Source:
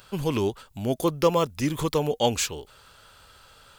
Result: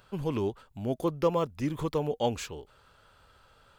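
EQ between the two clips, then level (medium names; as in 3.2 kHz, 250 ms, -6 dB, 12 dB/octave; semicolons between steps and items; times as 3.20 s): treble shelf 2.8 kHz -11.5 dB; -4.5 dB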